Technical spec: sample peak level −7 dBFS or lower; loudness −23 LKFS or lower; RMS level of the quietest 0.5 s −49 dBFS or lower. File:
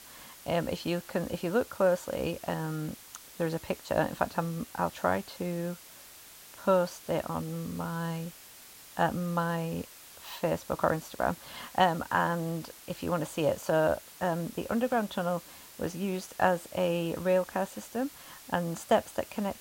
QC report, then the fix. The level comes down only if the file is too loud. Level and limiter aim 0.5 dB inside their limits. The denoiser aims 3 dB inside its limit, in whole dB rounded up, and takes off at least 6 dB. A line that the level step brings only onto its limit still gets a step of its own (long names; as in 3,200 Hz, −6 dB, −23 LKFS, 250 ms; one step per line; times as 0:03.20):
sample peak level −9.0 dBFS: in spec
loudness −31.5 LKFS: in spec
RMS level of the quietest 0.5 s −51 dBFS: in spec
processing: no processing needed